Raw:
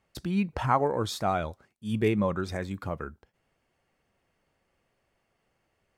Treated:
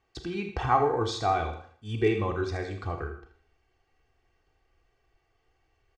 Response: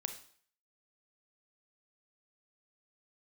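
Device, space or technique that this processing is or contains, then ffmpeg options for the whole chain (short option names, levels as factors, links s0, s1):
microphone above a desk: -filter_complex "[0:a]aecho=1:1:2.6:0.73[s0];[1:a]atrim=start_sample=2205[s1];[s0][s1]afir=irnorm=-1:irlink=0,lowpass=f=6700:w=0.5412,lowpass=f=6700:w=1.3066,asubboost=boost=2.5:cutoff=110,aecho=1:1:80|160|240:0.251|0.0754|0.0226"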